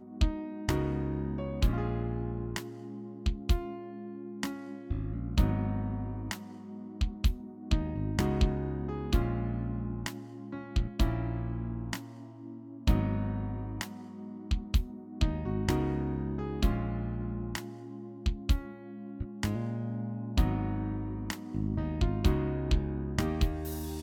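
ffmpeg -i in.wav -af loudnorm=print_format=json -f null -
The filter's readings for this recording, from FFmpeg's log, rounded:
"input_i" : "-33.4",
"input_tp" : "-12.6",
"input_lra" : "3.1",
"input_thresh" : "-43.6",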